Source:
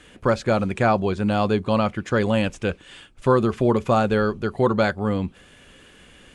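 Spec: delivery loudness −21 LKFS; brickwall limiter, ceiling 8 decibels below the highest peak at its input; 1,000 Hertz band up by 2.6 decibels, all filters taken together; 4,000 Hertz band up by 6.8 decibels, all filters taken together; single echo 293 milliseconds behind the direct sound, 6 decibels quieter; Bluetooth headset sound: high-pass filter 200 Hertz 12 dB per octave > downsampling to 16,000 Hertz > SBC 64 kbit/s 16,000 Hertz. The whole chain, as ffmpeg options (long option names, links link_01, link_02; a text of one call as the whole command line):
ffmpeg -i in.wav -af "equalizer=frequency=1000:width_type=o:gain=3,equalizer=frequency=4000:width_type=o:gain=8.5,alimiter=limit=-13dB:level=0:latency=1,highpass=200,aecho=1:1:293:0.501,aresample=16000,aresample=44100,volume=3.5dB" -ar 16000 -c:a sbc -b:a 64k out.sbc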